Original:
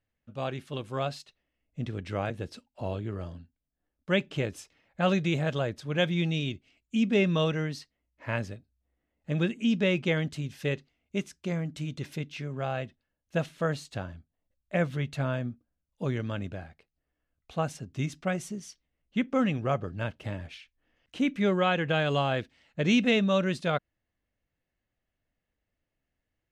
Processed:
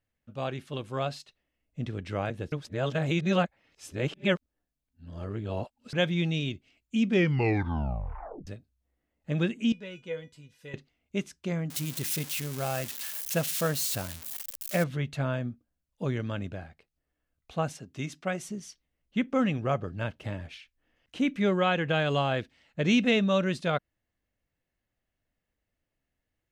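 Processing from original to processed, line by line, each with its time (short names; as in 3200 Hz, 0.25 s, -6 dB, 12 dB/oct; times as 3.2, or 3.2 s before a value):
2.52–5.93 reverse
7.07 tape stop 1.40 s
9.72–10.74 resonator 490 Hz, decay 0.2 s, mix 90%
11.7–14.84 switching spikes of -24 dBFS
17.74–18.49 HPF 230 Hz 6 dB/oct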